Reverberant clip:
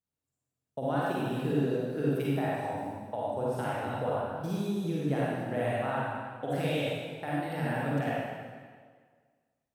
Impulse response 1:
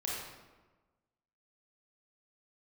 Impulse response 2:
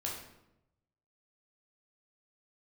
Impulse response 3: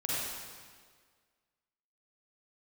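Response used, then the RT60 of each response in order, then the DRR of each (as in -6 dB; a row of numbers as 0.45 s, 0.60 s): 3; 1.3 s, 0.85 s, 1.7 s; -5.0 dB, -3.0 dB, -7.5 dB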